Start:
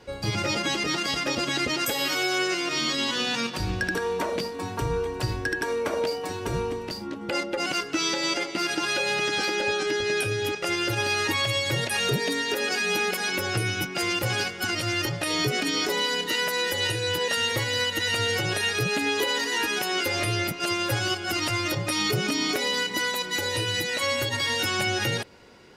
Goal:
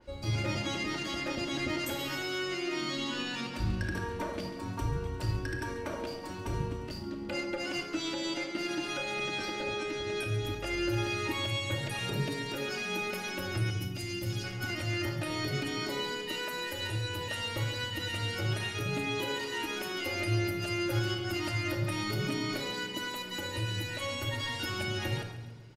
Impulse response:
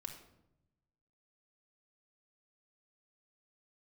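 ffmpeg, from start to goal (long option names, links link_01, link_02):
-filter_complex "[0:a]lowshelf=frequency=110:gain=9.5,asettb=1/sr,asplit=3[link_01][link_02][link_03];[link_01]atrim=end=10.414[link_04];[link_02]atrim=start=10.41:end=10.9,asetpts=PTS-STARTPTS,afade=type=in:duration=0.004:curve=qsin,afade=type=out:start_time=0.486:duration=0.004:curve=qsin,aeval=exprs='val(0)+0.0141*(sin(2*PI*50*n/s)+sin(2*PI*2*50*n/s)/2+sin(2*PI*3*50*n/s)/3+sin(2*PI*4*50*n/s)/4+sin(2*PI*5*50*n/s)/5)':channel_layout=same[link_05];[link_03]atrim=start=10.896[link_06];[link_04][link_05]acrossfade=duration=0.004:curve1=hsin:curve2=qsin[link_07];[link_07][link_06]acrossfade=duration=0.004:curve1=qsin:curve2=hsin,asettb=1/sr,asplit=3[link_08][link_09][link_10];[link_08]atrim=end=13.704[link_11];[link_09]atrim=start=13.7:end=14.44,asetpts=PTS-STARTPTS,afade=type=in:duration=0.004:curve=qsin,afade=type=out:start_time=0.736:duration=0.004:curve=qsin,acrossover=split=320|3000[link_12][link_13][link_14];[link_13]acompressor=threshold=-45dB:ratio=3[link_15];[link_12][link_15][link_14]amix=inputs=3:normalize=0[link_16];[link_10]atrim=start=14.436[link_17];[link_11][link_16]acrossfade=duration=0.004:curve1=hsin:curve2=qsin[link_18];[link_18][link_17]acrossfade=duration=0.004:curve1=qsin:curve2=hsin,aecho=1:1:138|276|414|552:0.211|0.0888|0.0373|0.0157[link_19];[1:a]atrim=start_sample=2205[link_20];[link_19][link_20]afir=irnorm=-1:irlink=0,adynamicequalizer=threshold=0.00708:dfrequency=3300:dqfactor=0.7:tfrequency=3300:tqfactor=0.7:attack=5:release=100:ratio=0.375:range=1.5:mode=cutabove:tftype=highshelf,volume=-5dB"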